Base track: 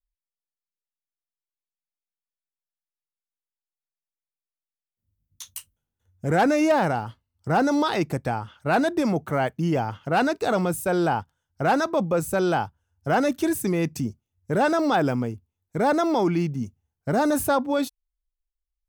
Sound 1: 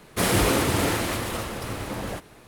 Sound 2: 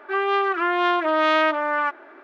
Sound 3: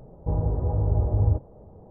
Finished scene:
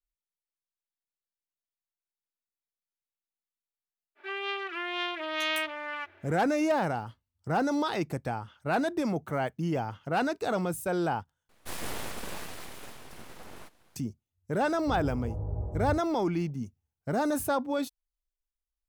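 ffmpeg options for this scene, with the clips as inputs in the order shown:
ffmpeg -i bed.wav -i cue0.wav -i cue1.wav -i cue2.wav -filter_complex "[0:a]volume=-6.5dB[link_01];[2:a]highshelf=frequency=1800:width_type=q:width=1.5:gain=9.5[link_02];[1:a]aeval=exprs='abs(val(0))':channel_layout=same[link_03];[link_01]asplit=2[link_04][link_05];[link_04]atrim=end=11.494[link_06];[link_03]atrim=end=2.47,asetpts=PTS-STARTPTS,volume=-13dB[link_07];[link_05]atrim=start=13.956[link_08];[link_02]atrim=end=2.23,asetpts=PTS-STARTPTS,volume=-14dB,afade=type=in:duration=0.05,afade=type=out:start_time=2.18:duration=0.05,adelay=4150[link_09];[3:a]atrim=end=1.9,asetpts=PTS-STARTPTS,volume=-11dB,afade=type=in:duration=0.004:curve=hsin,afade=type=out:start_time=1.896:duration=0.004:curve=hsin,adelay=14610[link_10];[link_06][link_07]acrossfade=duration=0.004:curve1=hsin:curve2=hsin[link_11];[link_11][link_08]acrossfade=duration=0.004:curve1=hsin:curve2=hsin[link_12];[link_12][link_09][link_10]amix=inputs=3:normalize=0" out.wav

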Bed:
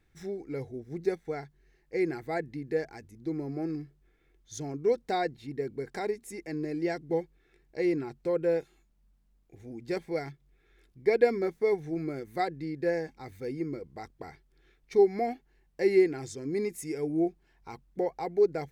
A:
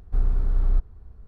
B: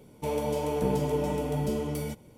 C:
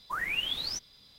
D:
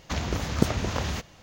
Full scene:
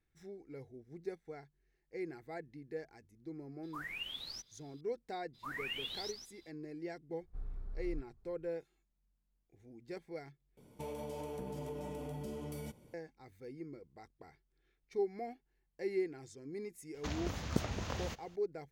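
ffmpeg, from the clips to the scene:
ffmpeg -i bed.wav -i cue0.wav -i cue1.wav -i cue2.wav -i cue3.wav -filter_complex "[3:a]asplit=2[link_01][link_02];[0:a]volume=-13dB[link_03];[link_02]aecho=1:1:138:0.473[link_04];[1:a]flanger=delay=4.5:depth=2.7:regen=75:speed=1.9:shape=triangular[link_05];[2:a]acompressor=threshold=-31dB:ratio=6:attack=3.2:release=140:knee=1:detection=peak[link_06];[link_03]asplit=2[link_07][link_08];[link_07]atrim=end=10.574[link_09];[link_06]atrim=end=2.37,asetpts=PTS-STARTPTS,volume=-8dB[link_10];[link_08]atrim=start=12.936[link_11];[link_01]atrim=end=1.18,asetpts=PTS-STARTPTS,volume=-11.5dB,afade=type=in:duration=0.004:curve=hsin,afade=type=out:start_time=1.176:duration=0.004:curve=hsin,adelay=3630[link_12];[link_04]atrim=end=1.18,asetpts=PTS-STARTPTS,volume=-10.5dB,afade=type=in:duration=0.02,afade=type=out:start_time=1.16:duration=0.02,adelay=235053S[link_13];[link_05]atrim=end=1.27,asetpts=PTS-STARTPTS,volume=-16.5dB,afade=type=in:duration=0.004:curve=hsin,afade=type=out:start_time=1.266:duration=0.004:curve=hsin,adelay=7210[link_14];[4:a]atrim=end=1.42,asetpts=PTS-STARTPTS,volume=-11dB,afade=type=in:duration=0.004:curve=hsin,afade=type=out:start_time=1.416:duration=0.004:curve=hsin,adelay=16940[link_15];[link_09][link_10]acrossfade=duration=0.004:curve1=hsin:curve2=hsin[link_16];[link_16][link_11]acrossfade=duration=0.004:curve1=hsin:curve2=hsin[link_17];[link_17][link_12][link_13][link_14][link_15]amix=inputs=5:normalize=0" out.wav

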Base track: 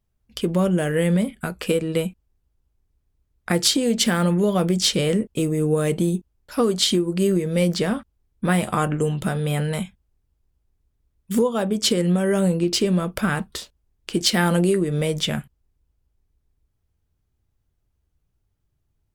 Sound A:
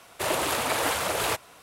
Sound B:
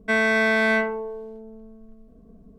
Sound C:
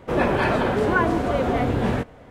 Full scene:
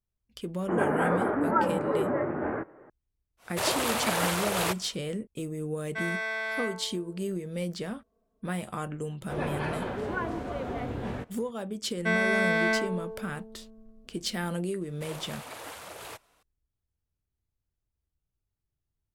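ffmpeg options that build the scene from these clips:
ffmpeg -i bed.wav -i cue0.wav -i cue1.wav -i cue2.wav -filter_complex "[3:a]asplit=2[link_01][link_02];[1:a]asplit=2[link_03][link_04];[2:a]asplit=2[link_05][link_06];[0:a]volume=-13dB[link_07];[link_01]highpass=frequency=370:width_type=q:width=0.5412,highpass=frequency=370:width_type=q:width=1.307,lowpass=frequency=2000:width_type=q:width=0.5176,lowpass=frequency=2000:width_type=q:width=0.7071,lowpass=frequency=2000:width_type=q:width=1.932,afreqshift=-140[link_08];[link_05]highpass=650[link_09];[link_08]atrim=end=2.3,asetpts=PTS-STARTPTS,volume=-3.5dB,afade=type=in:duration=0.004:curve=hsin,afade=type=out:start_time=2.296:duration=0.004:curve=hsin,adelay=600[link_10];[link_03]atrim=end=1.62,asetpts=PTS-STARTPTS,volume=-2dB,afade=type=in:duration=0.1,afade=type=out:start_time=1.52:duration=0.1,adelay=148617S[link_11];[link_09]atrim=end=2.58,asetpts=PTS-STARTPTS,volume=-10.5dB,afade=type=in:duration=0.004:curve=hsin,afade=type=out:start_time=2.576:duration=0.004:curve=hsin,adelay=5870[link_12];[link_02]atrim=end=2.3,asetpts=PTS-STARTPTS,volume=-12dB,afade=type=in:duration=0.004:curve=hsin,afade=type=out:start_time=2.296:duration=0.004:curve=hsin,adelay=9210[link_13];[link_06]atrim=end=2.58,asetpts=PTS-STARTPTS,volume=-5.5dB,afade=type=in:duration=0.004:curve=hsin,afade=type=out:start_time=2.576:duration=0.004:curve=hsin,adelay=11970[link_14];[link_04]atrim=end=1.62,asetpts=PTS-STARTPTS,volume=-16dB,afade=type=in:duration=0.004:curve=hsin,afade=type=out:start_time=1.616:duration=0.004:curve=hsin,adelay=14810[link_15];[link_07][link_10][link_11][link_12][link_13][link_14][link_15]amix=inputs=7:normalize=0" out.wav

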